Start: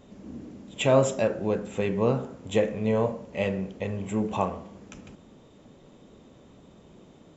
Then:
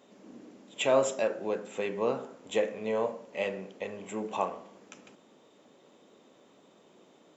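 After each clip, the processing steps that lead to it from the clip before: high-pass 300 Hz 12 dB/octave; bass shelf 460 Hz -3 dB; trim -2 dB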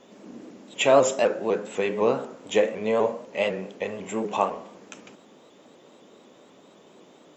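vibrato with a chosen wave saw up 4 Hz, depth 100 cents; trim +7 dB

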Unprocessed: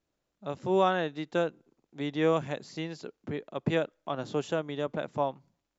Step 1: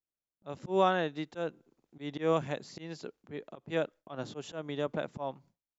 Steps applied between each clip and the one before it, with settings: gate with hold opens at -58 dBFS; slow attack 138 ms; trim -1 dB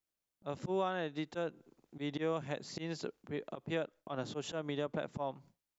compression 3:1, threshold -39 dBFS, peak gain reduction 14 dB; trim +4 dB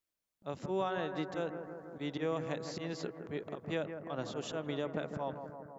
bucket-brigade echo 163 ms, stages 2048, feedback 70%, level -8.5 dB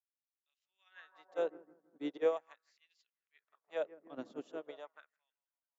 LFO high-pass sine 0.41 Hz 250–3000 Hz; upward expansion 2.5:1, over -50 dBFS; trim +1 dB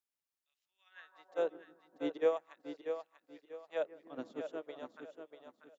feedback delay 640 ms, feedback 31%, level -8 dB; trim +1 dB

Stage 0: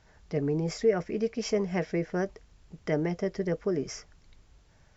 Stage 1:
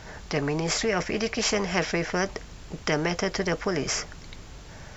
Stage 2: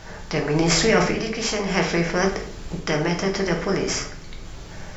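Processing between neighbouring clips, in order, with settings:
spectrum-flattening compressor 2:1; trim +5 dB
random-step tremolo 1.8 Hz; simulated room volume 92 m³, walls mixed, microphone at 0.68 m; trim +5.5 dB

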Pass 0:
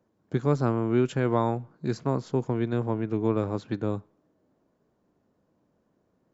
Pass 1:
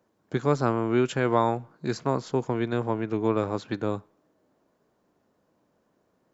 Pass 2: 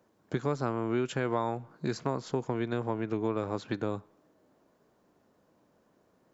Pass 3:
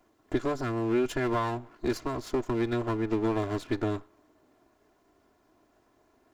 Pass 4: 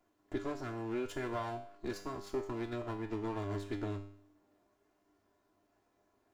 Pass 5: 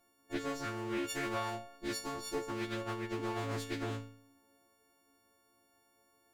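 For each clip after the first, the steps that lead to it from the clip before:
bass shelf 380 Hz -9 dB; trim +5.5 dB
compression 2.5:1, threshold -32 dBFS, peak gain reduction 11 dB; trim +2 dB
comb filter that takes the minimum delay 2.9 ms; trim +3.5 dB
feedback comb 100 Hz, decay 0.6 s, harmonics all, mix 80%; trim +1 dB
partials quantised in pitch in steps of 4 st; loudspeaker Doppler distortion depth 0.21 ms

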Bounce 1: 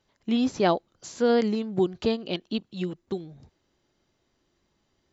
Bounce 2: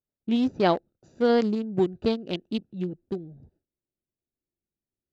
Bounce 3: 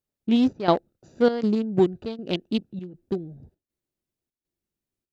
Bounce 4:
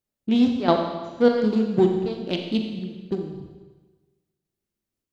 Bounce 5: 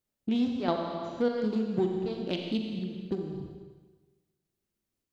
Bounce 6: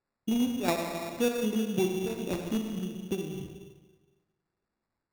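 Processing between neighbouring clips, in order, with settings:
local Wiener filter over 41 samples; gate with hold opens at -53 dBFS; trim +1 dB
trance gate "xxxxxxx..x" 199 bpm -12 dB; trim +4 dB
Schroeder reverb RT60 1.3 s, combs from 29 ms, DRR 3 dB
compression 2:1, threshold -32 dBFS, peak gain reduction 11.5 dB
sample-rate reducer 3.1 kHz, jitter 0%

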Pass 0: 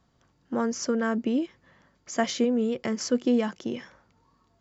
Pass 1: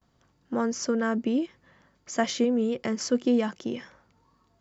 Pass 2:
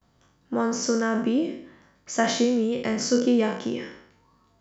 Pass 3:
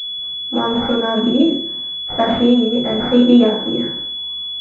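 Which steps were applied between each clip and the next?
gate with hold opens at -59 dBFS
spectral sustain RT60 0.62 s; trim +1.5 dB
simulated room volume 120 m³, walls furnished, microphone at 4 m; class-D stage that switches slowly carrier 3.4 kHz; trim -1.5 dB

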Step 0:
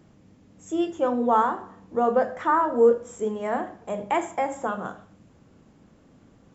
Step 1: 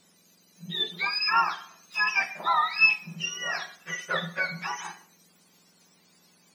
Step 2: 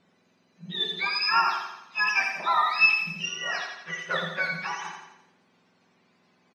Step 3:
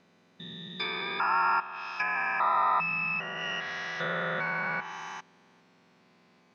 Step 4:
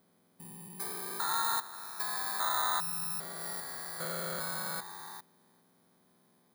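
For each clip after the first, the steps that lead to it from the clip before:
spectrum inverted on a logarithmic axis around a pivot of 1.1 kHz
level-controlled noise filter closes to 2.3 kHz, open at -22 dBFS; on a send: feedback delay 85 ms, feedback 49%, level -6 dB
spectrogram pixelated in time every 400 ms; low-pass that closes with the level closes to 1.6 kHz, closed at -29 dBFS; trim +4 dB
bit-reversed sample order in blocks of 16 samples; trim -5.5 dB

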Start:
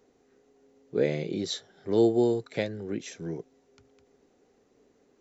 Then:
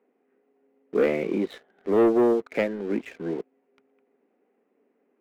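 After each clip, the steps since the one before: elliptic band-pass 210–2500 Hz, stop band 40 dB; waveshaping leveller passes 2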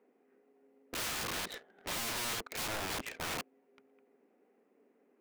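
in parallel at -1 dB: peak limiter -20 dBFS, peak gain reduction 7 dB; on the sum: integer overflow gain 26 dB; trim -6 dB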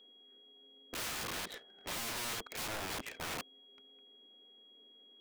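whistle 3.3 kHz -56 dBFS; trim -2.5 dB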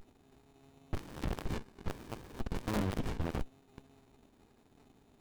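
sliding maximum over 65 samples; trim +11.5 dB

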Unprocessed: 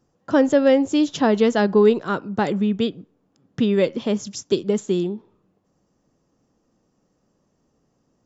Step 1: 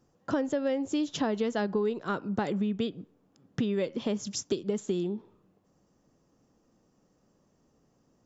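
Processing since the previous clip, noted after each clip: compression 5:1, threshold -26 dBFS, peak gain reduction 14 dB; trim -1 dB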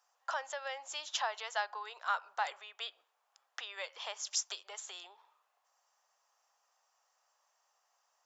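steep high-pass 750 Hz 36 dB/octave; trim +1.5 dB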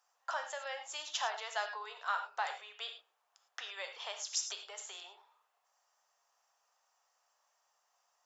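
gated-style reverb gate 130 ms flat, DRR 5.5 dB; trim -1.5 dB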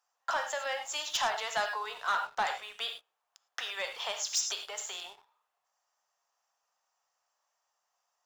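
waveshaping leveller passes 2

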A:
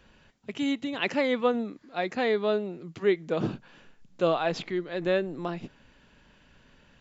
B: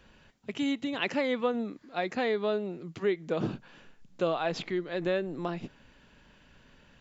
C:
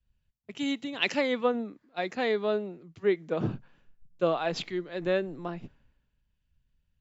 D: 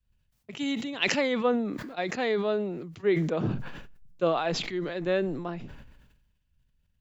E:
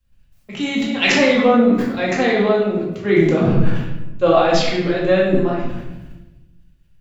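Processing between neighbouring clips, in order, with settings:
compression 2:1, threshold -27 dBFS, peak gain reduction 5.5 dB
three bands expanded up and down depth 100%
decay stretcher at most 45 dB/s
simulated room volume 440 m³, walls mixed, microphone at 2.2 m; trim +5.5 dB

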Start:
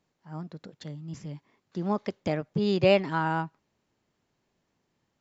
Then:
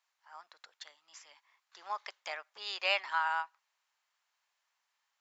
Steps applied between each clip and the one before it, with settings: high-pass 940 Hz 24 dB/octave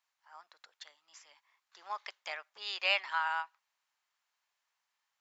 dynamic bell 2.8 kHz, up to +4 dB, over -48 dBFS, Q 0.77; trim -2.5 dB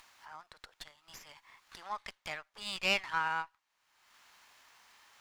upward compressor, threshold -42 dBFS; sliding maximum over 3 samples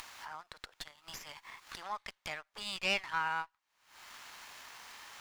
upward compressor, threshold -37 dBFS; waveshaping leveller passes 1; trim -4.5 dB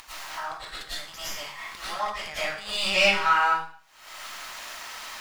reverberation RT60 0.50 s, pre-delay 70 ms, DRR -12.5 dB

